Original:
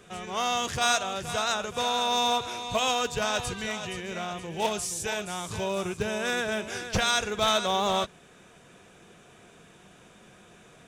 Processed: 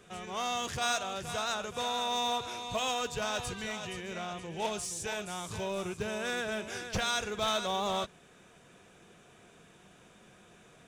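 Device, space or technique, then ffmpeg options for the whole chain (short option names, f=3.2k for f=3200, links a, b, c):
parallel distortion: -filter_complex "[0:a]asettb=1/sr,asplit=3[a][b][c];[a]atrim=end=4.134[d];[b]atrim=start=4.13:end=5.1,asetpts=PTS-STARTPTS,afade=t=in:d=0.004:c=qsin,afade=t=out:st=0.966:d=0.004:c=qsin,lowpass=11k[e];[c]atrim=start=5.096[f];[d][e]acrossfade=d=0.004:c1=hsin:c2=qsin[g];[g][f]acrossfade=d=0.004:c1=qsin:c2=hsin,asplit=2[h][i];[i]asoftclip=type=hard:threshold=-30dB,volume=-5.5dB[j];[h][j]amix=inputs=2:normalize=0,volume=-8dB"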